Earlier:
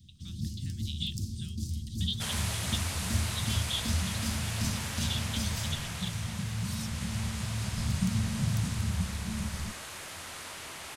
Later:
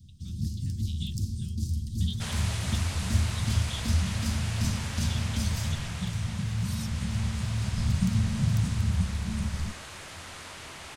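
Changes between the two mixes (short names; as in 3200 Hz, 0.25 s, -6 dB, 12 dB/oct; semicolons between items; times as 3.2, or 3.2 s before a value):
speech -6.5 dB; second sound: add bell 14000 Hz -11.5 dB 0.7 oct; master: add low shelf 150 Hz +7 dB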